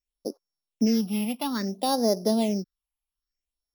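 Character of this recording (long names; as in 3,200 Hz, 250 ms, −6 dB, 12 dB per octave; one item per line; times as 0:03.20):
a buzz of ramps at a fixed pitch in blocks of 8 samples
phaser sweep stages 6, 0.59 Hz, lowest notch 420–2,800 Hz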